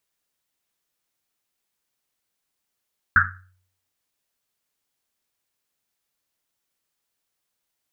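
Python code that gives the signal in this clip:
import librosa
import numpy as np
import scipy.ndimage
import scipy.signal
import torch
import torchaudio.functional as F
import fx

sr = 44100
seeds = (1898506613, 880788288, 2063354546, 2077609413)

y = fx.risset_drum(sr, seeds[0], length_s=1.1, hz=92.0, decay_s=0.63, noise_hz=1500.0, noise_width_hz=460.0, noise_pct=75)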